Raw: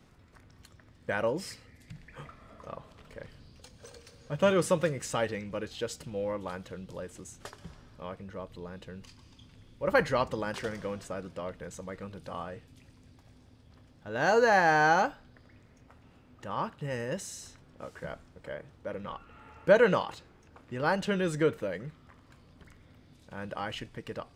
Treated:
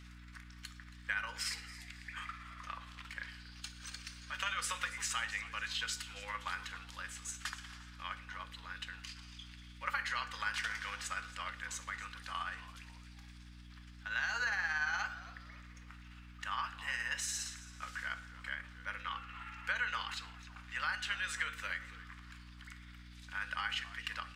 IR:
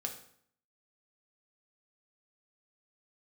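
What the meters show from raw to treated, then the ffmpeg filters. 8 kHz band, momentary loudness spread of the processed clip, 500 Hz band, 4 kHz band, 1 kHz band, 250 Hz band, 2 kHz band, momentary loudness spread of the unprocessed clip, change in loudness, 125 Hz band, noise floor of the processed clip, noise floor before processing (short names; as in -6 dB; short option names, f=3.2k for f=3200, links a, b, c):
+1.5 dB, 17 LU, -29.5 dB, +2.0 dB, -9.5 dB, -19.5 dB, -2.5 dB, 23 LU, -9.0 dB, -12.0 dB, -54 dBFS, -59 dBFS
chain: -filter_complex "[0:a]highpass=f=1.4k:w=0.5412,highpass=f=1.4k:w=1.3066,highshelf=f=6.5k:g=-8.5,alimiter=level_in=2dB:limit=-24dB:level=0:latency=1:release=20,volume=-2dB,acompressor=threshold=-44dB:ratio=6,tremolo=f=17:d=0.38,aeval=exprs='val(0)+0.000631*(sin(2*PI*60*n/s)+sin(2*PI*2*60*n/s)/2+sin(2*PI*3*60*n/s)/3+sin(2*PI*4*60*n/s)/4+sin(2*PI*5*60*n/s)/5)':c=same,asplit=4[a][b][c][d];[b]adelay=274,afreqshift=-110,volume=-17dB[e];[c]adelay=548,afreqshift=-220,volume=-26.1dB[f];[d]adelay=822,afreqshift=-330,volume=-35.2dB[g];[a][e][f][g]amix=inputs=4:normalize=0,asplit=2[h][i];[1:a]atrim=start_sample=2205[j];[i][j]afir=irnorm=-1:irlink=0,volume=-1dB[k];[h][k]amix=inputs=2:normalize=0,volume=7dB"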